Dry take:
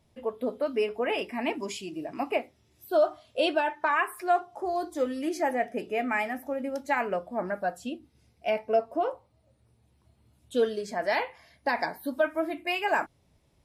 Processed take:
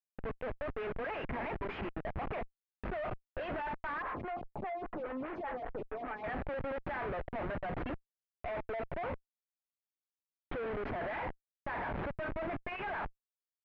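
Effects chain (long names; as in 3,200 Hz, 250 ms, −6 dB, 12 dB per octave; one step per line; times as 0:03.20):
high-pass filter 770 Hz 12 dB per octave
comparator with hysteresis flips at −43.5 dBFS
low-pass filter 2,200 Hz 24 dB per octave
0:04.02–0:06.24: phaser with staggered stages 5 Hz
level −2 dB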